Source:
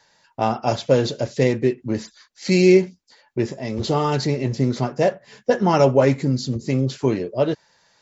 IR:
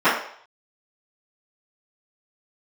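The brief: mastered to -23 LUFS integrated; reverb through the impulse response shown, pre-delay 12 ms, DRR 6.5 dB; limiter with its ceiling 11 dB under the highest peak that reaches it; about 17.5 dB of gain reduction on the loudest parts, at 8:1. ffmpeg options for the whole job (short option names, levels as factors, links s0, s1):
-filter_complex "[0:a]acompressor=threshold=0.0398:ratio=8,alimiter=level_in=1.41:limit=0.0631:level=0:latency=1,volume=0.708,asplit=2[s0][s1];[1:a]atrim=start_sample=2205,adelay=12[s2];[s1][s2]afir=irnorm=-1:irlink=0,volume=0.0316[s3];[s0][s3]amix=inputs=2:normalize=0,volume=5.31"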